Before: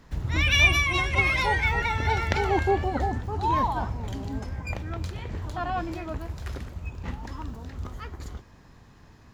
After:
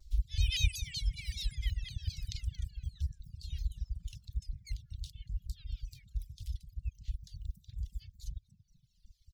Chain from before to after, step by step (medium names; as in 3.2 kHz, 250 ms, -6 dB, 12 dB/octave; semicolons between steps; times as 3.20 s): inverse Chebyshev band-stop 260–1100 Hz, stop band 80 dB; resonant high shelf 4.5 kHz -8 dB, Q 1.5; frequency-shifting echo 231 ms, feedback 32%, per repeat +39 Hz, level -12 dB; reverb removal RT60 1.4 s; 3.83–4.34 s: crackle 130 per s -66 dBFS; reverb removal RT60 1.8 s; vibrato with a chosen wave saw down 5.3 Hz, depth 250 cents; trim +5.5 dB